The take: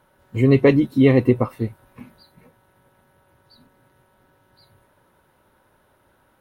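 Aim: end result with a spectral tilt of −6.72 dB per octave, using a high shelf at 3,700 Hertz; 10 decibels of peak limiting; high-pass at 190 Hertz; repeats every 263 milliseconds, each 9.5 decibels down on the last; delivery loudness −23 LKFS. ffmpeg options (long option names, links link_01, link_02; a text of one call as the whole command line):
ffmpeg -i in.wav -af "highpass=190,highshelf=frequency=3700:gain=5,alimiter=limit=-13dB:level=0:latency=1,aecho=1:1:263|526|789|1052:0.335|0.111|0.0365|0.012,volume=1.5dB" out.wav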